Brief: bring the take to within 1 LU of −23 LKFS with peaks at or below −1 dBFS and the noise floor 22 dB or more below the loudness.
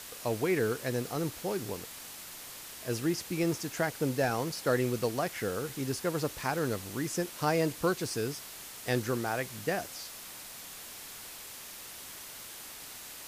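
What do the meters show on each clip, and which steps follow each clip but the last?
background noise floor −46 dBFS; target noise floor −56 dBFS; integrated loudness −34.0 LKFS; sample peak −15.0 dBFS; target loudness −23.0 LKFS
→ broadband denoise 10 dB, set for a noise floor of −46 dBFS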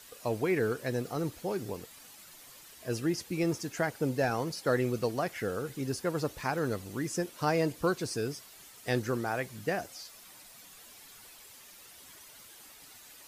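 background noise floor −53 dBFS; target noise floor −55 dBFS
→ broadband denoise 6 dB, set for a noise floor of −53 dBFS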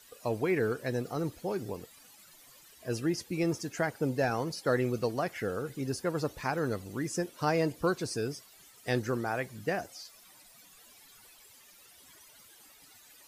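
background noise floor −58 dBFS; integrated loudness −32.5 LKFS; sample peak −15.0 dBFS; target loudness −23.0 LKFS
→ level +9.5 dB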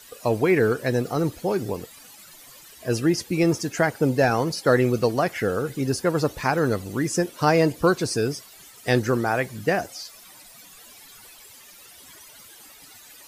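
integrated loudness −23.0 LKFS; sample peak −5.5 dBFS; background noise floor −48 dBFS

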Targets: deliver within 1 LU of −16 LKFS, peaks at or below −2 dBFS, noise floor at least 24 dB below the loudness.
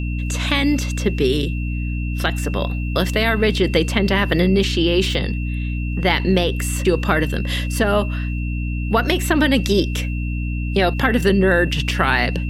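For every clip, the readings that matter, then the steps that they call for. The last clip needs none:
mains hum 60 Hz; hum harmonics up to 300 Hz; level of the hum −20 dBFS; interfering tone 2,700 Hz; level of the tone −34 dBFS; integrated loudness −19.5 LKFS; sample peak −1.5 dBFS; target loudness −16.0 LKFS
→ hum removal 60 Hz, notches 5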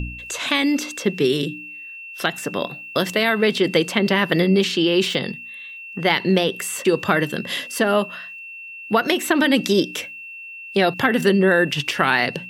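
mains hum none found; interfering tone 2,700 Hz; level of the tone −34 dBFS
→ notch filter 2,700 Hz, Q 30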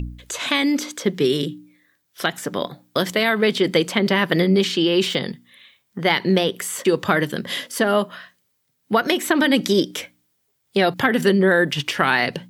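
interfering tone none found; integrated loudness −20.0 LKFS; sample peak −2.5 dBFS; target loudness −16.0 LKFS
→ level +4 dB
brickwall limiter −2 dBFS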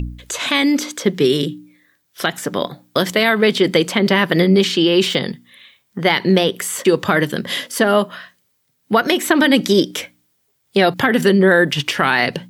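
integrated loudness −16.5 LKFS; sample peak −2.0 dBFS; background noise floor −66 dBFS

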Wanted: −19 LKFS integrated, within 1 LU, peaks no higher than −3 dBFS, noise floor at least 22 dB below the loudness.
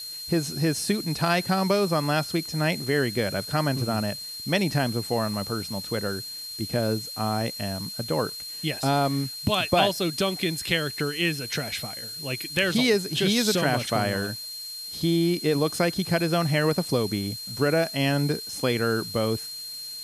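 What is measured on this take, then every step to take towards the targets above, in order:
interfering tone 4,200 Hz; level of the tone −35 dBFS; background noise floor −37 dBFS; target noise floor −48 dBFS; integrated loudness −25.5 LKFS; sample peak −7.5 dBFS; target loudness −19.0 LKFS
→ notch filter 4,200 Hz, Q 30
noise reduction from a noise print 11 dB
level +6.5 dB
brickwall limiter −3 dBFS

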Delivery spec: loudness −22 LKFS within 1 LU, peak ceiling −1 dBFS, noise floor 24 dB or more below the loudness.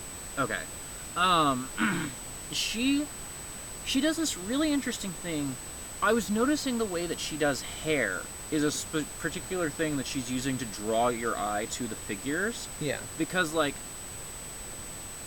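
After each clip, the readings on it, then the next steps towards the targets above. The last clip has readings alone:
interfering tone 8,000 Hz; level of the tone −41 dBFS; background noise floor −41 dBFS; target noise floor −55 dBFS; integrated loudness −30.5 LKFS; sample peak −13.0 dBFS; target loudness −22.0 LKFS
→ notch filter 8,000 Hz, Q 30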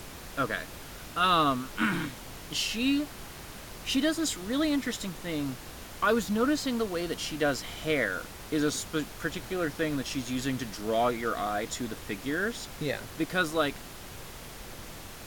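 interfering tone none found; background noise floor −44 dBFS; target noise floor −54 dBFS
→ noise reduction from a noise print 10 dB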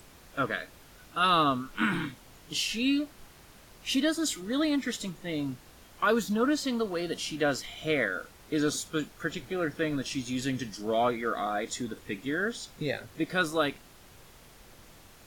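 background noise floor −54 dBFS; target noise floor −55 dBFS
→ noise reduction from a noise print 6 dB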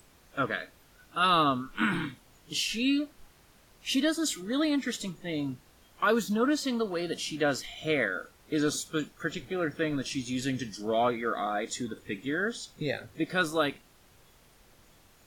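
background noise floor −60 dBFS; integrated loudness −30.5 LKFS; sample peak −12.5 dBFS; target loudness −22.0 LKFS
→ level +8.5 dB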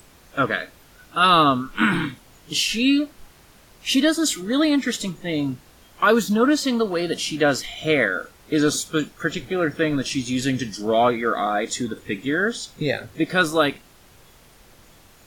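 integrated loudness −22.0 LKFS; sample peak −4.0 dBFS; background noise floor −52 dBFS

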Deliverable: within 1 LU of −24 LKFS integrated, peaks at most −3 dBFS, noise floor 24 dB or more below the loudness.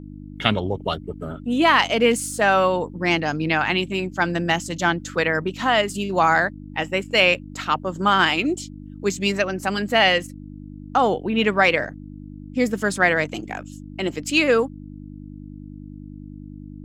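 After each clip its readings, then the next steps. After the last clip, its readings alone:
mains hum 50 Hz; hum harmonics up to 300 Hz; level of the hum −35 dBFS; integrated loudness −21.0 LKFS; sample peak −1.0 dBFS; target loudness −24.0 LKFS
→ hum removal 50 Hz, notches 6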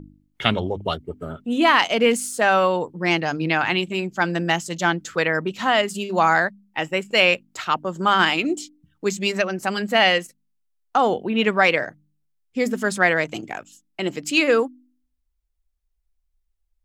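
mains hum none found; integrated loudness −21.0 LKFS; sample peak −1.5 dBFS; target loudness −24.0 LKFS
→ level −3 dB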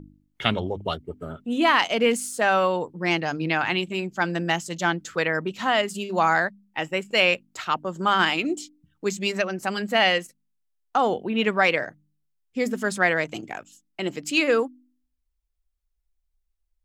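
integrated loudness −24.0 LKFS; sample peak −4.5 dBFS; background noise floor −75 dBFS

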